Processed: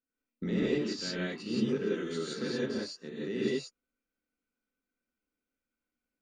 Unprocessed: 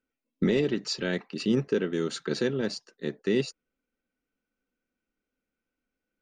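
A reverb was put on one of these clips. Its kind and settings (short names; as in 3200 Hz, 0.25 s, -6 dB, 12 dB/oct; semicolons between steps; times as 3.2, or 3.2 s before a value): non-linear reverb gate 0.2 s rising, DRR -8 dB; gain -12.5 dB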